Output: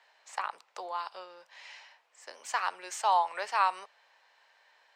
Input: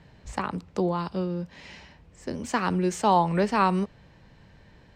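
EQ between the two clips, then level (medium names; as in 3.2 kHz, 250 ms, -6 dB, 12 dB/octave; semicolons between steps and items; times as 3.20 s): high-pass 720 Hz 24 dB/octave; -2.5 dB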